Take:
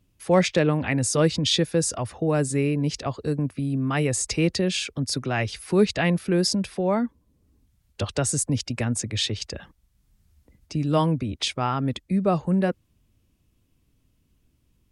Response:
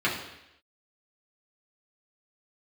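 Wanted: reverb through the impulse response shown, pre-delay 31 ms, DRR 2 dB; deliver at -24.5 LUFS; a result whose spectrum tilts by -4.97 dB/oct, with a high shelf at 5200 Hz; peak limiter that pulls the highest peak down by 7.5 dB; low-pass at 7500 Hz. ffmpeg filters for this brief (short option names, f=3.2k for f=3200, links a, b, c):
-filter_complex "[0:a]lowpass=7.5k,highshelf=f=5.2k:g=6.5,alimiter=limit=-16dB:level=0:latency=1,asplit=2[a][b];[1:a]atrim=start_sample=2205,adelay=31[c];[b][c]afir=irnorm=-1:irlink=0,volume=-15.5dB[d];[a][d]amix=inputs=2:normalize=0,volume=-0.5dB"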